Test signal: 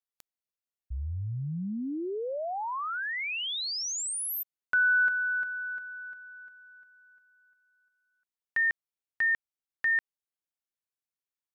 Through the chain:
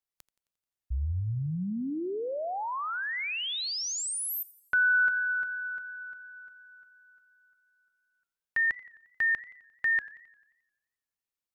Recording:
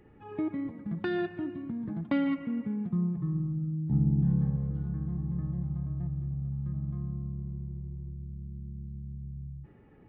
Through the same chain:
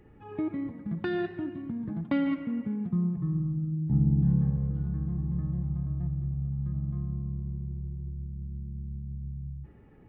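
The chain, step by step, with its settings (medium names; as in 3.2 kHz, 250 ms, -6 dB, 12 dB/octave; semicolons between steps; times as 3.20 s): bass shelf 98 Hz +6 dB; modulated delay 88 ms, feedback 56%, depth 136 cents, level -20 dB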